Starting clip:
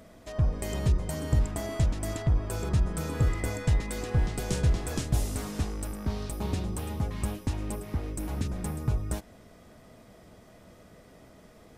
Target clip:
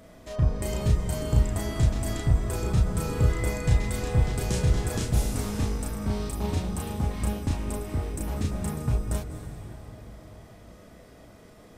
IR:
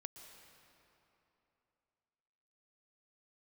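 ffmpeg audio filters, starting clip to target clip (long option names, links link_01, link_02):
-filter_complex "[0:a]asplit=2[link_01][link_02];[1:a]atrim=start_sample=2205,asetrate=32193,aresample=44100,adelay=34[link_03];[link_02][link_03]afir=irnorm=-1:irlink=0,volume=2.5dB[link_04];[link_01][link_04]amix=inputs=2:normalize=0"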